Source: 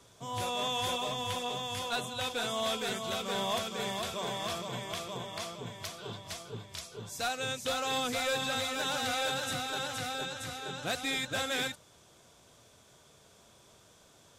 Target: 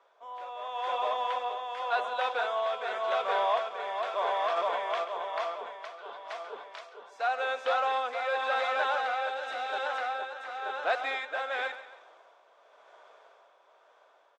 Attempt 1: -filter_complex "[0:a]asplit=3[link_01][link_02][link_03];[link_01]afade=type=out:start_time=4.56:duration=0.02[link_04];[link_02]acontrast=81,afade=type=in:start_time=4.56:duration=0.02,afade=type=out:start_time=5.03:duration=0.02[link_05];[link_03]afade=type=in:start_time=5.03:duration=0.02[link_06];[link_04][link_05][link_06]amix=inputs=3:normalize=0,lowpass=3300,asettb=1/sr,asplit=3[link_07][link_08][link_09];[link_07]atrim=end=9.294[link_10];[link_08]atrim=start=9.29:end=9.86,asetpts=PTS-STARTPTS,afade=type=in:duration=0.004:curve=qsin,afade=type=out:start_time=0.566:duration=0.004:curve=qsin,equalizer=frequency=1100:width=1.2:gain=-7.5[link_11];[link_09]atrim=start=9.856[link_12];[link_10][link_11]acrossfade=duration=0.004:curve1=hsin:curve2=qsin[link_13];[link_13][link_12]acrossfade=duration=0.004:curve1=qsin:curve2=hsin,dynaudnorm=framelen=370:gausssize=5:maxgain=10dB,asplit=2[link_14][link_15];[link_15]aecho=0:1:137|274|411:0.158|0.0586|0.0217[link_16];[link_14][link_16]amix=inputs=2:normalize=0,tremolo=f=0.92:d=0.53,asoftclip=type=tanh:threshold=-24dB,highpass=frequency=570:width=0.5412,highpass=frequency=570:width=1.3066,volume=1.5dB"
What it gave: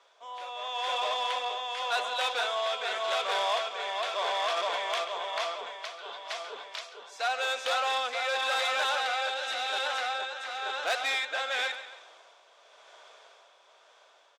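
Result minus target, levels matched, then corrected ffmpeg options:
4,000 Hz band +8.5 dB; soft clipping: distortion +11 dB
-filter_complex "[0:a]asplit=3[link_01][link_02][link_03];[link_01]afade=type=out:start_time=4.56:duration=0.02[link_04];[link_02]acontrast=81,afade=type=in:start_time=4.56:duration=0.02,afade=type=out:start_time=5.03:duration=0.02[link_05];[link_03]afade=type=in:start_time=5.03:duration=0.02[link_06];[link_04][link_05][link_06]amix=inputs=3:normalize=0,lowpass=1500,asettb=1/sr,asplit=3[link_07][link_08][link_09];[link_07]atrim=end=9.294[link_10];[link_08]atrim=start=9.29:end=9.86,asetpts=PTS-STARTPTS,afade=type=in:duration=0.004:curve=qsin,afade=type=out:start_time=0.566:duration=0.004:curve=qsin,equalizer=frequency=1100:width=1.2:gain=-7.5[link_11];[link_09]atrim=start=9.856[link_12];[link_10][link_11]acrossfade=duration=0.004:curve1=hsin:curve2=qsin[link_13];[link_13][link_12]acrossfade=duration=0.004:curve1=qsin:curve2=hsin,dynaudnorm=framelen=370:gausssize=5:maxgain=10dB,asplit=2[link_14][link_15];[link_15]aecho=0:1:137|274|411:0.158|0.0586|0.0217[link_16];[link_14][link_16]amix=inputs=2:normalize=0,tremolo=f=0.92:d=0.53,asoftclip=type=tanh:threshold=-17dB,highpass=frequency=570:width=0.5412,highpass=frequency=570:width=1.3066,volume=1.5dB"

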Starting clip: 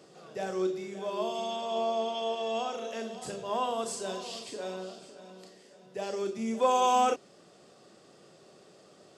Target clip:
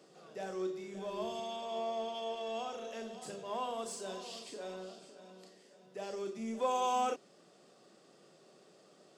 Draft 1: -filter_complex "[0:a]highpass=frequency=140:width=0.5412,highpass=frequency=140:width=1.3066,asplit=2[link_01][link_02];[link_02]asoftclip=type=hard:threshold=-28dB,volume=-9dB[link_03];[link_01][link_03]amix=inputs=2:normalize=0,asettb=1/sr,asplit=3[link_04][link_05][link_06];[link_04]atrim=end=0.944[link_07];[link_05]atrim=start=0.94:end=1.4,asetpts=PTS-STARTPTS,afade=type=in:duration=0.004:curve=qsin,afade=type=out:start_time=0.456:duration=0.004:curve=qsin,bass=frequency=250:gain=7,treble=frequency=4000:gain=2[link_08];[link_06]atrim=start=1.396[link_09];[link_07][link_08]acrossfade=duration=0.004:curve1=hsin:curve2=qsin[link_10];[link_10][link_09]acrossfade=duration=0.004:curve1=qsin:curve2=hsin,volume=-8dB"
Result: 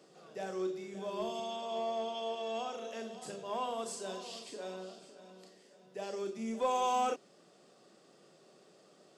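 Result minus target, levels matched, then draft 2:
hard clipping: distortion −6 dB
-filter_complex "[0:a]highpass=frequency=140:width=0.5412,highpass=frequency=140:width=1.3066,asplit=2[link_01][link_02];[link_02]asoftclip=type=hard:threshold=-39dB,volume=-9dB[link_03];[link_01][link_03]amix=inputs=2:normalize=0,asettb=1/sr,asplit=3[link_04][link_05][link_06];[link_04]atrim=end=0.944[link_07];[link_05]atrim=start=0.94:end=1.4,asetpts=PTS-STARTPTS,afade=type=in:duration=0.004:curve=qsin,afade=type=out:start_time=0.456:duration=0.004:curve=qsin,bass=frequency=250:gain=7,treble=frequency=4000:gain=2[link_08];[link_06]atrim=start=1.396[link_09];[link_07][link_08]acrossfade=duration=0.004:curve1=hsin:curve2=qsin[link_10];[link_10][link_09]acrossfade=duration=0.004:curve1=qsin:curve2=hsin,volume=-8dB"

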